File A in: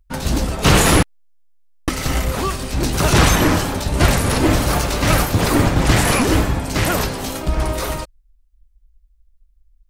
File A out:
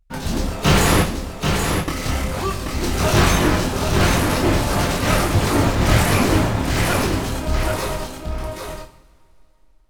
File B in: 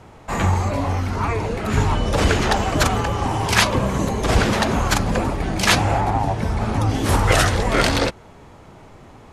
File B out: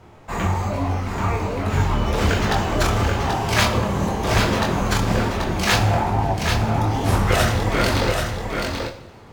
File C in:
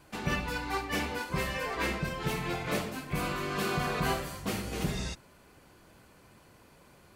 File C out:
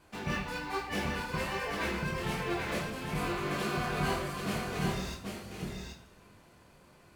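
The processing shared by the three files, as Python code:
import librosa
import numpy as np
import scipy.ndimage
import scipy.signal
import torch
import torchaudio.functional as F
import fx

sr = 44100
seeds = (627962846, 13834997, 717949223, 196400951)

y = fx.chorus_voices(x, sr, voices=2, hz=1.2, base_ms=24, depth_ms=3.8, mix_pct=40)
y = y + 10.0 ** (-5.0 / 20.0) * np.pad(y, (int(783 * sr / 1000.0), 0))[:len(y)]
y = fx.rev_double_slope(y, sr, seeds[0], early_s=0.68, late_s=3.4, knee_db=-20, drr_db=7.5)
y = np.interp(np.arange(len(y)), np.arange(len(y))[::2], y[::2])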